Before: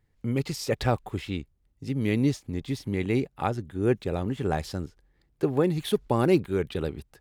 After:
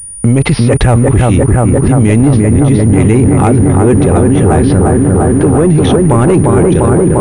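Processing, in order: ending faded out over 0.67 s; low shelf 95 Hz +8.5 dB; analogue delay 0.348 s, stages 4096, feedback 80%, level -5 dB; sample leveller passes 2; air absorption 270 m; maximiser +26.5 dB; pulse-width modulation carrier 9500 Hz; gain -1 dB

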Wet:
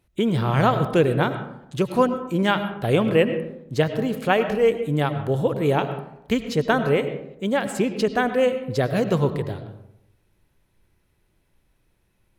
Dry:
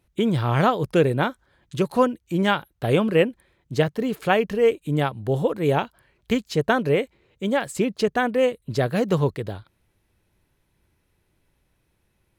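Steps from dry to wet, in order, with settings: on a send: low shelf 150 Hz +9.5 dB + reverb RT60 0.80 s, pre-delay 60 ms, DRR 9 dB

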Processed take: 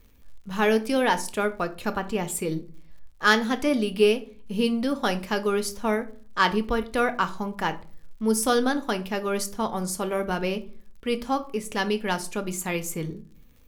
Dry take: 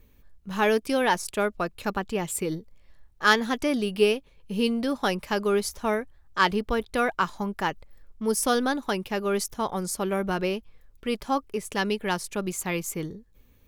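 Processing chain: on a send at -9 dB: reverb RT60 0.40 s, pre-delay 4 ms; on the sum: crackle 81/s -48 dBFS

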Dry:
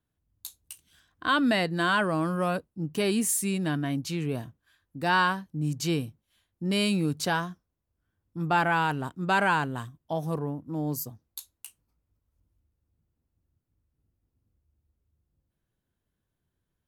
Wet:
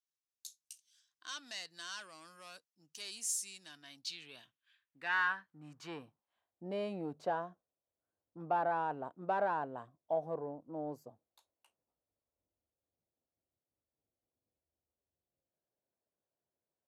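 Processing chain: soft clip -19 dBFS, distortion -17 dB; band-pass sweep 5800 Hz -> 620 Hz, 3.66–6.68

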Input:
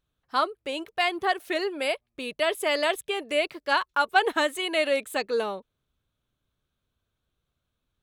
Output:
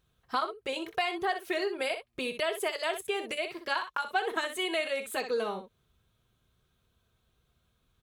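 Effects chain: on a send: early reflections 27 ms -16 dB, 62 ms -11 dB; on the sum: compressor 3:1, threshold -39 dBFS, peak gain reduction 17.5 dB; notch comb 290 Hz; gain +8 dB

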